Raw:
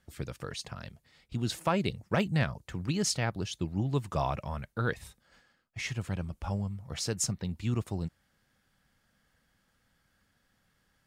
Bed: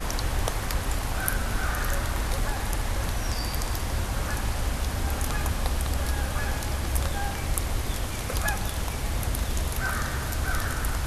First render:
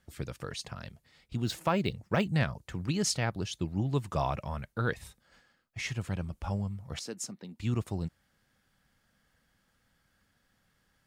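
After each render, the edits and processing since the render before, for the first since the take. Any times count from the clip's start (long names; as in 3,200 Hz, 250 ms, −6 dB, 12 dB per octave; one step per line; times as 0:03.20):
0:01.44–0:02.28: linearly interpolated sample-rate reduction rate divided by 2×
0:06.99–0:07.60: four-pole ladder high-pass 190 Hz, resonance 35%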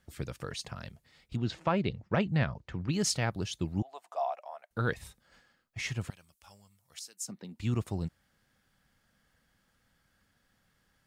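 0:01.36–0:02.93: high-frequency loss of the air 150 metres
0:03.82–0:04.71: four-pole ladder high-pass 650 Hz, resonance 75%
0:06.10–0:07.28: first-order pre-emphasis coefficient 0.97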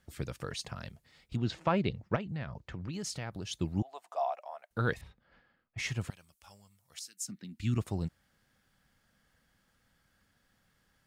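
0:02.16–0:03.51: downward compressor 4 to 1, threshold −36 dBFS
0:05.01–0:05.78: high-frequency loss of the air 320 metres
0:07.06–0:07.78: flat-topped bell 670 Hz −14 dB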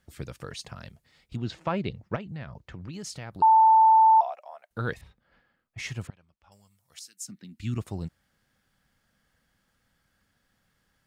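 0:03.42–0:04.21: beep over 886 Hz −13.5 dBFS
0:06.07–0:06.52: head-to-tape spacing loss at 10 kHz 31 dB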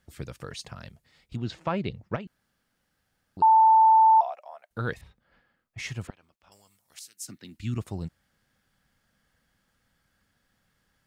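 0:02.27–0:03.37: fill with room tone
0:06.07–0:07.58: ceiling on every frequency bin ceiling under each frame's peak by 14 dB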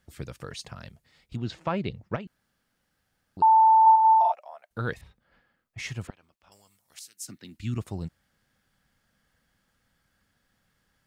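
0:03.82–0:04.32: flutter between parallel walls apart 7.7 metres, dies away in 1.3 s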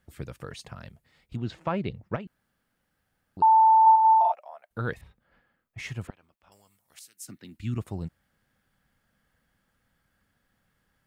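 parametric band 5,400 Hz −6 dB 1.5 octaves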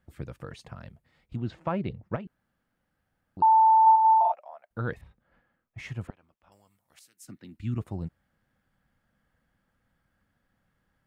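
high-shelf EQ 2,500 Hz −9 dB
notch filter 420 Hz, Q 12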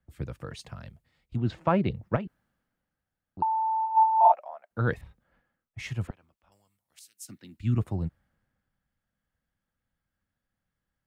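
compressor whose output falls as the input rises −22 dBFS, ratio −0.5
multiband upward and downward expander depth 40%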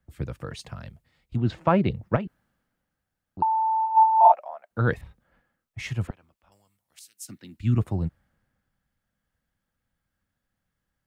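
level +3.5 dB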